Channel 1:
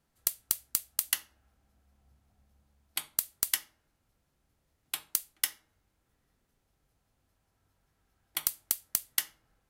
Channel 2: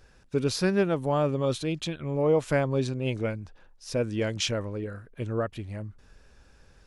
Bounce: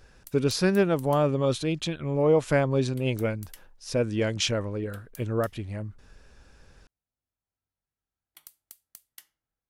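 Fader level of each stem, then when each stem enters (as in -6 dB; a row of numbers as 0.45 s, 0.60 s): -19.5 dB, +2.0 dB; 0.00 s, 0.00 s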